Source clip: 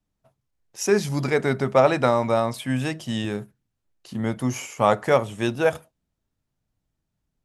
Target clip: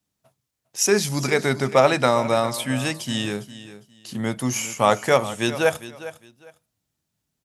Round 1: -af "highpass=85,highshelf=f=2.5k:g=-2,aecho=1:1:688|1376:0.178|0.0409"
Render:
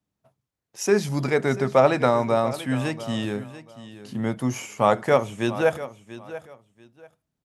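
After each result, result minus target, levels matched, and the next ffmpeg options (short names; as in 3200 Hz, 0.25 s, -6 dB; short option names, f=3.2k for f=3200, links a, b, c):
echo 0.283 s late; 4000 Hz band -6.5 dB
-af "highpass=85,highshelf=f=2.5k:g=-2,aecho=1:1:405|810:0.178|0.0409"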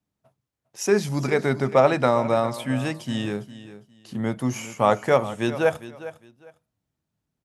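4000 Hz band -6.5 dB
-af "highpass=85,highshelf=f=2.5k:g=10,aecho=1:1:405|810:0.178|0.0409"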